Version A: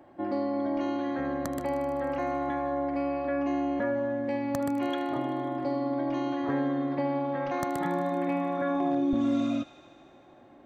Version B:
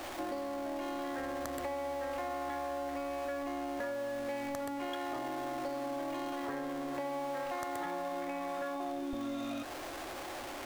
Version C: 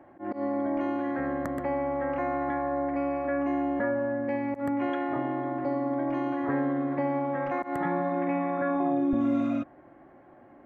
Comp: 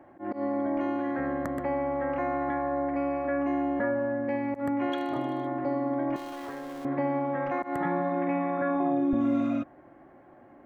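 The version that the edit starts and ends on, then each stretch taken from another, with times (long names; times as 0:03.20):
C
0:04.92–0:05.47: punch in from A
0:06.16–0:06.85: punch in from B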